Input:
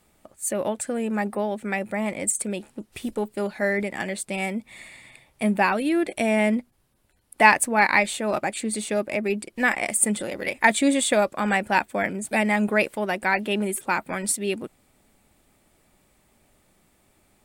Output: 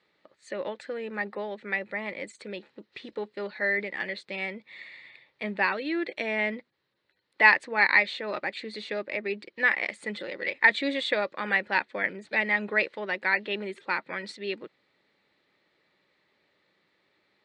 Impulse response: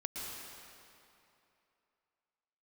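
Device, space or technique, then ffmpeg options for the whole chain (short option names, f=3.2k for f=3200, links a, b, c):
kitchen radio: -af "highpass=220,equalizer=f=240:t=q:w=4:g=-9,equalizer=f=500:t=q:w=4:g=3,equalizer=f=710:t=q:w=4:g=-8,equalizer=f=1.9k:t=q:w=4:g=8,equalizer=f=4.1k:t=q:w=4:g=9,lowpass=f=4.4k:w=0.5412,lowpass=f=4.4k:w=1.3066,volume=-5.5dB"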